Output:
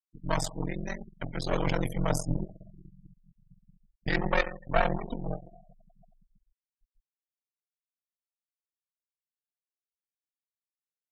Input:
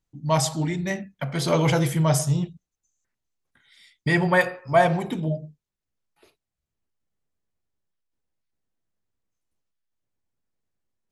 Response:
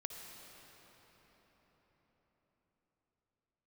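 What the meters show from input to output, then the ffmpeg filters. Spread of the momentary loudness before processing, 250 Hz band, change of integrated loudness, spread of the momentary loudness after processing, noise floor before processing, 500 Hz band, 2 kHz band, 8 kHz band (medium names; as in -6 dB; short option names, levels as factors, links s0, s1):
11 LU, -9.0 dB, -8.5 dB, 12 LU, -85 dBFS, -8.5 dB, -7.5 dB, -11.0 dB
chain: -filter_complex "[0:a]asplit=2[s0][s1];[1:a]atrim=start_sample=2205,lowpass=7700[s2];[s1][s2]afir=irnorm=-1:irlink=0,volume=0.251[s3];[s0][s3]amix=inputs=2:normalize=0,aeval=exprs='max(val(0),0)':c=same,afftfilt=real='re*gte(hypot(re,im),0.0251)':imag='im*gte(hypot(re,im),0.0251)':win_size=1024:overlap=0.75,aeval=exprs='val(0)*sin(2*PI*22*n/s)':c=same,volume=0.794"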